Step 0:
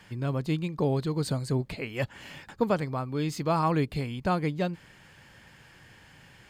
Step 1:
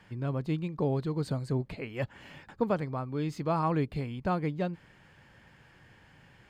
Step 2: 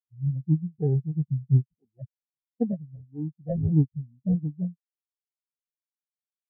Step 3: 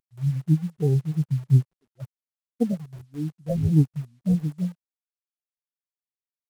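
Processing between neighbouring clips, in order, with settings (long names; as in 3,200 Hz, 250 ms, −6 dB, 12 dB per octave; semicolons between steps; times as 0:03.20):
high-shelf EQ 3,400 Hz −10.5 dB; level −2.5 dB
inverse Chebyshev low-pass filter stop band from 6,900 Hz, stop band 40 dB; sample-rate reduction 1,200 Hz, jitter 0%; every bin expanded away from the loudest bin 4 to 1; level +5 dB
variable-slope delta modulation 64 kbit/s; in parallel at −8.5 dB: bit reduction 7 bits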